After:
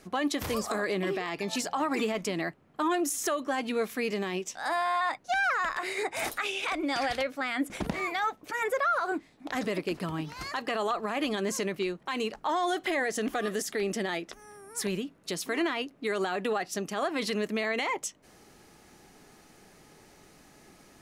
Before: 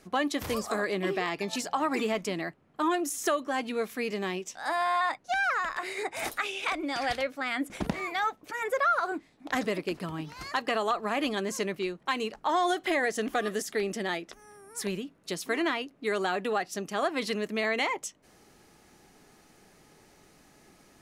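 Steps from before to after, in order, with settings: limiter -23 dBFS, peak gain reduction 9 dB; gain +2.5 dB

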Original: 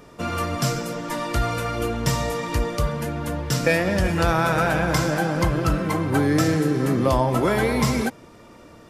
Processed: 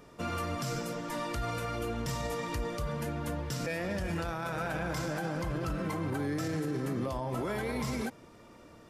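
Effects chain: limiter -18 dBFS, peak gain reduction 11 dB; gain -7.5 dB

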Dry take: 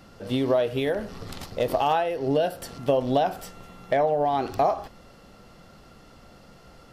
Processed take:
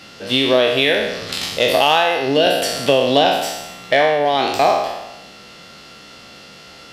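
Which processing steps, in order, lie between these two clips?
spectral trails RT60 1.02 s; weighting filter D; 2.46–3.25 three-band squash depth 40%; gain +5.5 dB

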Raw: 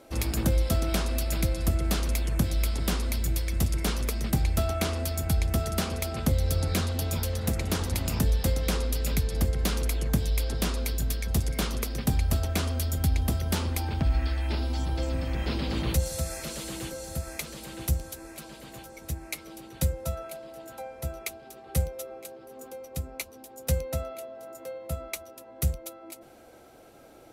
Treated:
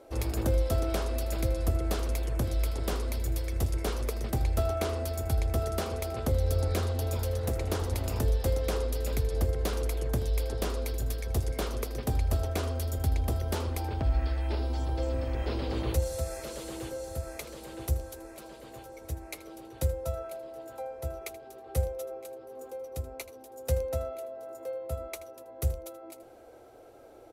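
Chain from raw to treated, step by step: EQ curve 120 Hz 0 dB, 160 Hz -11 dB, 430 Hz +5 dB, 2400 Hz -5 dB; echo 80 ms -16 dB; gain -2 dB

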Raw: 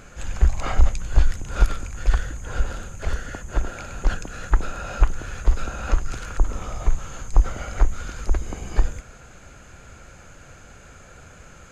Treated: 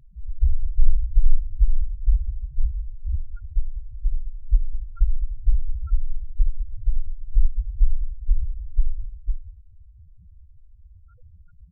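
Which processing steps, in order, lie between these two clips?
tapped delay 65/77/200/287/503 ms -3.5/-7.5/-10/-18.5/-5.5 dB; loudest bins only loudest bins 2; gain +1 dB

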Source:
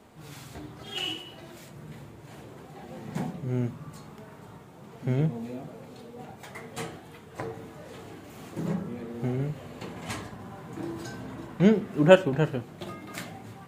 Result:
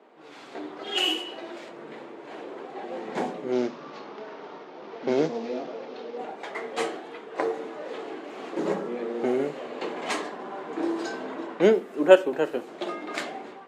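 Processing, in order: 3.52–6.18 CVSD 32 kbps; HPF 340 Hz 24 dB/oct; low-pass opened by the level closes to 2900 Hz, open at -28.5 dBFS; low shelf 490 Hz +7.5 dB; AGC gain up to 8 dB; gain -1 dB

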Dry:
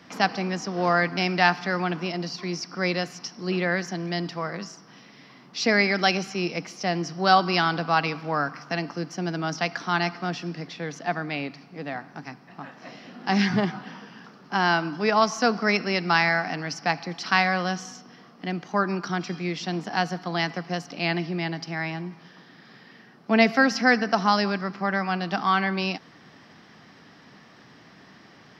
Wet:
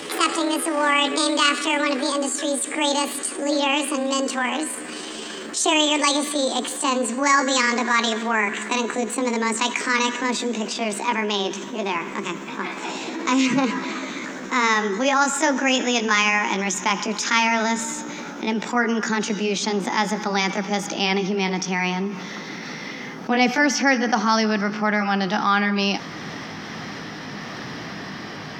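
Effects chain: gliding pitch shift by +9 st ending unshifted; fast leveller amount 50%

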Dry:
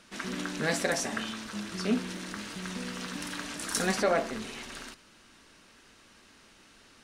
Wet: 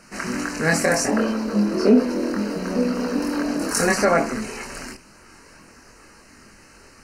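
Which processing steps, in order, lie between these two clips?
1.08–3.71 graphic EQ 125/250/500/2000/4000/8000 Hz -9/+9/+11/-6/+4/-11 dB; chorus voices 4, 0.68 Hz, delay 24 ms, depth 1.2 ms; Butterworth band-stop 3500 Hz, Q 3.2; bell 3300 Hz -9 dB 0.58 oct; maximiser +18 dB; gain -5 dB

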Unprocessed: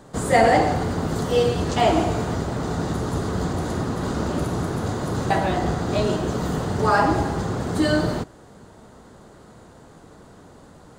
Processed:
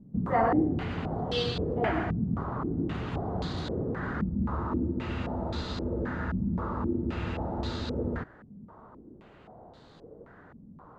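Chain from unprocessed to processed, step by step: dynamic EQ 580 Hz, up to -6 dB, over -32 dBFS, Q 0.8; spectral freeze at 4.28, 3.91 s; stepped low-pass 3.8 Hz 210–4000 Hz; gain -7.5 dB

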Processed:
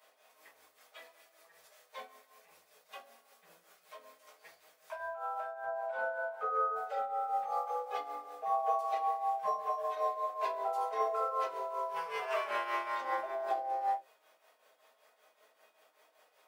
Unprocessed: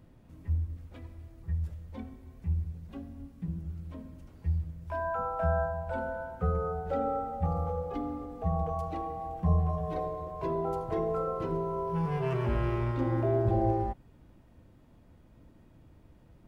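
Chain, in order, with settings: HPF 650 Hz 24 dB/oct; high shelf 3100 Hz +7 dB, from 5.64 s -6 dB, from 6.76 s +4.5 dB; negative-ratio compressor -36 dBFS, ratio -0.5; tremolo triangle 5.2 Hz, depth 80%; reverb, pre-delay 5 ms, DRR -6 dB

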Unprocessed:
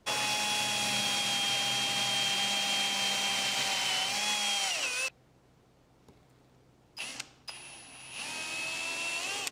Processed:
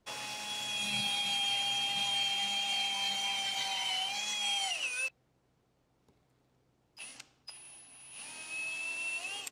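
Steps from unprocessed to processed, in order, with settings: spectral noise reduction 10 dB; 2.25–4.41 core saturation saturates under 2100 Hz

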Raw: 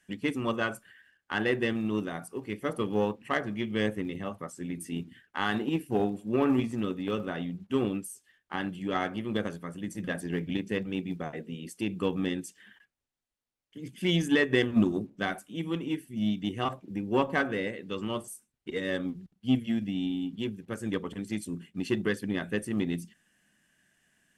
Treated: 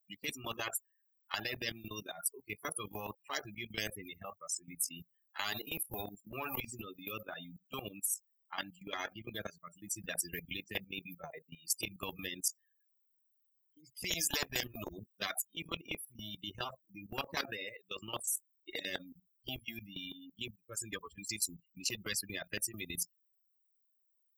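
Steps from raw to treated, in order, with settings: per-bin expansion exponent 3; HPF 760 Hz 6 dB/oct; high shelf 6000 Hz +9 dB; level quantiser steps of 16 dB; limiter -29.5 dBFS, peak gain reduction 7.5 dB; spectral compressor 10:1; gain +12 dB

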